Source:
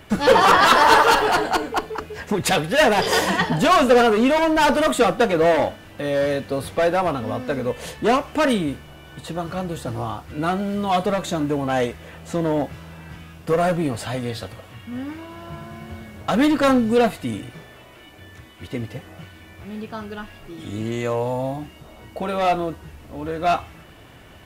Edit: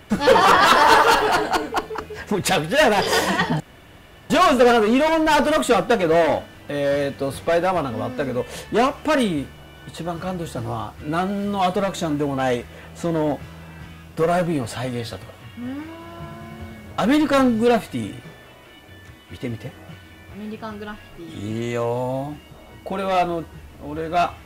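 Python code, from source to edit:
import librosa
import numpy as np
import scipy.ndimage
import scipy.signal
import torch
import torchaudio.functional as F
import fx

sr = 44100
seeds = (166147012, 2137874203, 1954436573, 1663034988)

y = fx.edit(x, sr, fx.insert_room_tone(at_s=3.6, length_s=0.7), tone=tone)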